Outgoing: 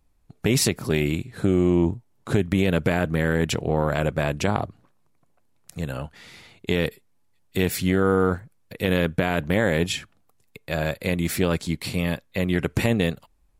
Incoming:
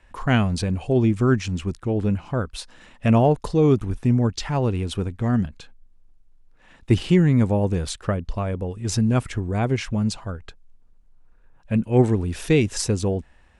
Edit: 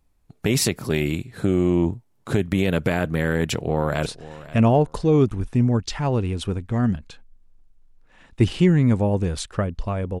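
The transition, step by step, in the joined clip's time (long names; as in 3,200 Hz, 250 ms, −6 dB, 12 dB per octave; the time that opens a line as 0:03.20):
outgoing
0:03.38–0:04.06: delay throw 530 ms, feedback 20%, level −17 dB
0:04.06: continue with incoming from 0:02.56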